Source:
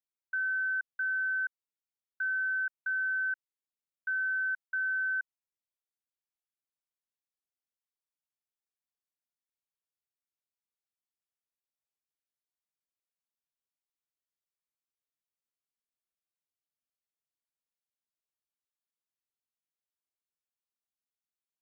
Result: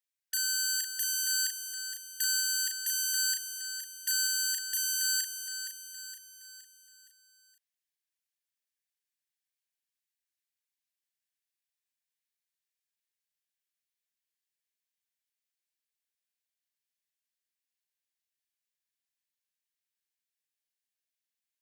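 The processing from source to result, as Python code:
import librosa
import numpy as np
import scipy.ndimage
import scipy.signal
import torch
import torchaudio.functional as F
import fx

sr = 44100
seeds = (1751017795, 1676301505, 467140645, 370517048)

p1 = fx.self_delay(x, sr, depth_ms=0.93)
p2 = 10.0 ** (-37.5 / 20.0) * np.tanh(p1 / 10.0 ** (-37.5 / 20.0))
p3 = p1 + F.gain(torch.from_numpy(p2), -10.0).numpy()
p4 = fx.brickwall_highpass(p3, sr, low_hz=1500.0)
p5 = fx.doubler(p4, sr, ms=36.0, db=-4.5)
y = p5 + fx.echo_feedback(p5, sr, ms=467, feedback_pct=48, wet_db=-8.5, dry=0)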